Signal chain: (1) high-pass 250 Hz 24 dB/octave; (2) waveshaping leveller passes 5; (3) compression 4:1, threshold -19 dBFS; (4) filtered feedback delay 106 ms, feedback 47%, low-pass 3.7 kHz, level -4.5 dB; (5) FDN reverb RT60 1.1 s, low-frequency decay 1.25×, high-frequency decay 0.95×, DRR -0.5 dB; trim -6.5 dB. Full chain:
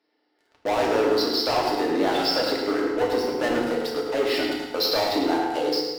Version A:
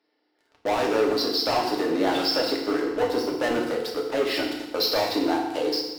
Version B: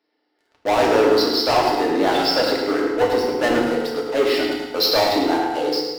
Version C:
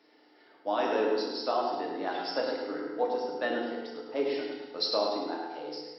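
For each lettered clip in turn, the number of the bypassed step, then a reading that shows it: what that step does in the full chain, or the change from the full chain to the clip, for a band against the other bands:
4, echo-to-direct 2.5 dB to 0.5 dB; 3, momentary loudness spread change +1 LU; 2, crest factor change +3.0 dB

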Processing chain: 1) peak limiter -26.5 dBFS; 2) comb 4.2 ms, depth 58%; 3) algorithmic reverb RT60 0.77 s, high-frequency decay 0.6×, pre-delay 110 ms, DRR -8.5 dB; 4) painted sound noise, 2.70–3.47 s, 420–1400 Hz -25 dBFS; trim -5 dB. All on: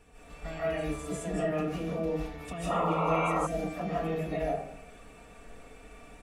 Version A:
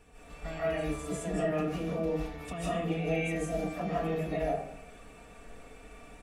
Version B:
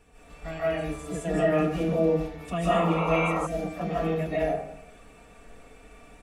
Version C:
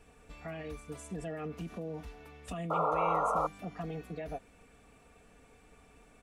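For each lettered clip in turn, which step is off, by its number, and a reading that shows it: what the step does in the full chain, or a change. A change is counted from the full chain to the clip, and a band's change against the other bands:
4, 1 kHz band -6.0 dB; 1, mean gain reduction 2.0 dB; 3, momentary loudness spread change -7 LU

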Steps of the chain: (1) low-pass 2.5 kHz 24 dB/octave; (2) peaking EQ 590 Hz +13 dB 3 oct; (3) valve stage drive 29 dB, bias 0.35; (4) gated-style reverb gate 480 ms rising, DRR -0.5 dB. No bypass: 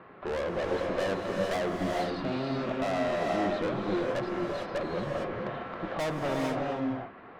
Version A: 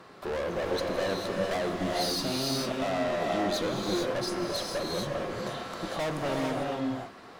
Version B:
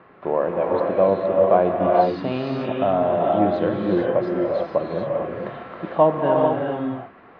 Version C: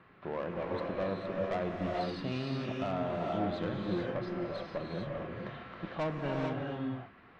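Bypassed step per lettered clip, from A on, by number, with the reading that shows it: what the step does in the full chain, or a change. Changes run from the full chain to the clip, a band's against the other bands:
1, 8 kHz band +11.0 dB; 3, crest factor change +3.0 dB; 2, 125 Hz band +5.5 dB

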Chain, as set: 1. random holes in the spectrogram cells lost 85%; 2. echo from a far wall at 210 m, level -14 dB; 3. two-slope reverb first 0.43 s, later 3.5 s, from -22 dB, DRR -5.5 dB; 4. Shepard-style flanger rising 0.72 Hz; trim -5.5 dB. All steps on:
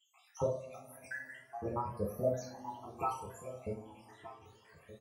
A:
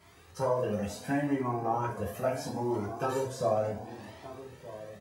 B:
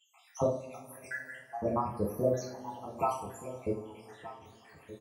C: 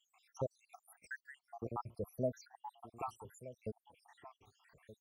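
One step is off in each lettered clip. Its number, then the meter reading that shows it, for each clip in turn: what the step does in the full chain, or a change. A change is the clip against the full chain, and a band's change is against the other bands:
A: 1, 250 Hz band +4.5 dB; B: 4, 250 Hz band +2.5 dB; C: 3, crest factor change +1.5 dB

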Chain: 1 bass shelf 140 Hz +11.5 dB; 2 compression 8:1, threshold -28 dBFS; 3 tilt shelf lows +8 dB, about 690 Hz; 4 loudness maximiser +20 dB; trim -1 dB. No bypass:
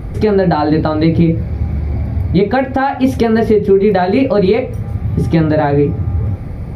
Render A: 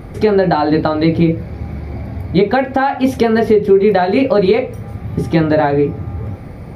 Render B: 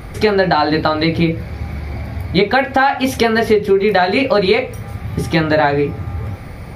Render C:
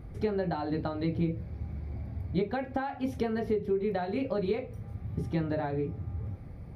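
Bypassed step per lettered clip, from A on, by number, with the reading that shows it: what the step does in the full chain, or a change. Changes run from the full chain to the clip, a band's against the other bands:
1, 125 Hz band -5.5 dB; 3, 4 kHz band +10.0 dB; 4, crest factor change +5.0 dB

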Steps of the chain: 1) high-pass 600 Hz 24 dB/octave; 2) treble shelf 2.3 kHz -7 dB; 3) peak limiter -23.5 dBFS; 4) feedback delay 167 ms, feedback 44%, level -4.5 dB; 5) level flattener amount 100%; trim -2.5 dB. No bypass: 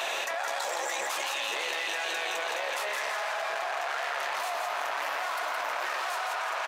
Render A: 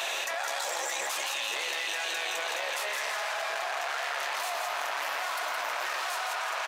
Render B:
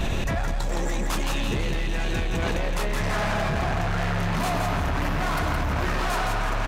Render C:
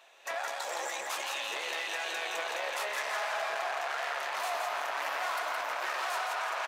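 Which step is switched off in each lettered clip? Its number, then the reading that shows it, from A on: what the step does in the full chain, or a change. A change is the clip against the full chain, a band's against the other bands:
2, 8 kHz band +4.5 dB; 1, crest factor change -3.0 dB; 5, momentary loudness spread change +1 LU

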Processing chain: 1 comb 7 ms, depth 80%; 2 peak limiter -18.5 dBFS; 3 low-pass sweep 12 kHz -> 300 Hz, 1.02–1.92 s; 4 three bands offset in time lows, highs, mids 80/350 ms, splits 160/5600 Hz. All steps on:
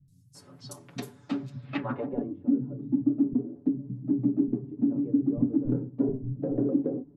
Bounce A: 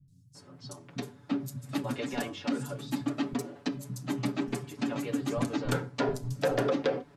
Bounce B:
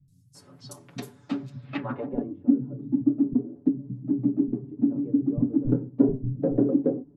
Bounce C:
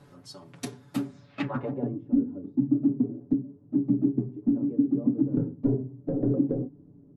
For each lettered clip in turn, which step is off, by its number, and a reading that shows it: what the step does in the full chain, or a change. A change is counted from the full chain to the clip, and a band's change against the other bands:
3, 250 Hz band -9.0 dB; 2, crest factor change +3.5 dB; 4, echo-to-direct 25.0 dB to none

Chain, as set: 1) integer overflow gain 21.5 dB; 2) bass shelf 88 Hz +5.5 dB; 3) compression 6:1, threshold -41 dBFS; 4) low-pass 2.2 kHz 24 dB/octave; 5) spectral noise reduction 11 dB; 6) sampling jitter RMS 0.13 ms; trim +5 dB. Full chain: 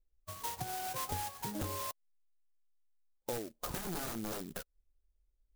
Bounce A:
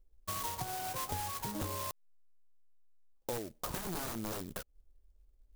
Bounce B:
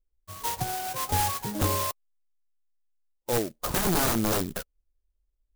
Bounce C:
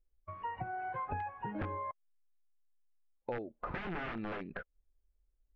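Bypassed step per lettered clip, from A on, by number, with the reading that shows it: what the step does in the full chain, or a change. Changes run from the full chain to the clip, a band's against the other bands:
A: 5, momentary loudness spread change -1 LU; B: 3, mean gain reduction 7.0 dB; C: 6, 4 kHz band -12.0 dB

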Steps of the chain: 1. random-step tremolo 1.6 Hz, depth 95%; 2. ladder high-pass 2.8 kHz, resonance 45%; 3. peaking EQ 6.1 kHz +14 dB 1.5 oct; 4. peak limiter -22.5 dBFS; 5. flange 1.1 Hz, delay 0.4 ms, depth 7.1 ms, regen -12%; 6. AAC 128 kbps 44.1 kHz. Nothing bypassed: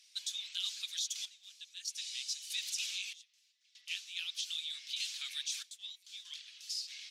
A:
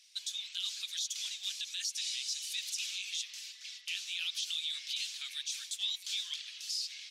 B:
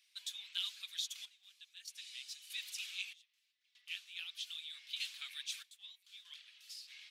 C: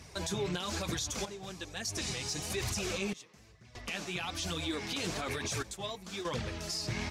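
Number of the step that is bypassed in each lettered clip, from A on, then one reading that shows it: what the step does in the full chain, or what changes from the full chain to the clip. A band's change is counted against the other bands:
1, momentary loudness spread change -6 LU; 3, crest factor change +5.0 dB; 2, crest factor change -5.5 dB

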